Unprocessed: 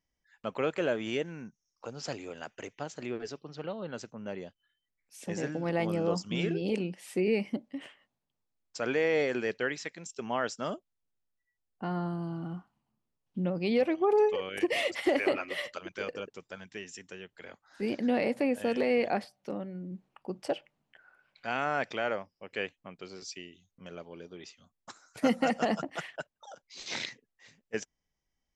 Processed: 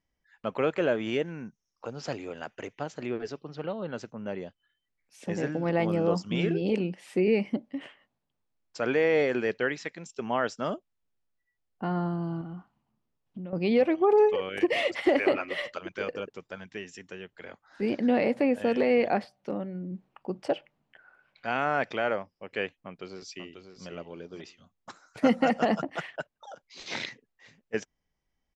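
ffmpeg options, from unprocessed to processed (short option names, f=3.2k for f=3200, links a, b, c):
-filter_complex "[0:a]asettb=1/sr,asplit=3[a][b][c];[a]atrim=end=12.414[d];[b]atrim=start=12.41:end=13.53,asetpts=PTS-STARTPTS,afade=t=in:d=0.004:c=qsin,afade=t=out:st=1.116:d=0.004:c=qsin,acompressor=threshold=-40dB:ratio=6:attack=3.2:release=140:knee=1:detection=peak[e];[c]atrim=start=13.526[f];[d][e]acrossfade=d=0.004:c1=hsin:c2=qsin[g];[g][f]acrossfade=d=0.004:c1=qsin:c2=hsin,asplit=2[h][i];[i]afade=t=in:st=22.8:d=0.01,afade=t=out:st=23.87:d=0.01,aecho=0:1:540|1080:0.398107|0.0597161[j];[h][j]amix=inputs=2:normalize=0,aemphasis=mode=reproduction:type=50fm,volume=3.5dB"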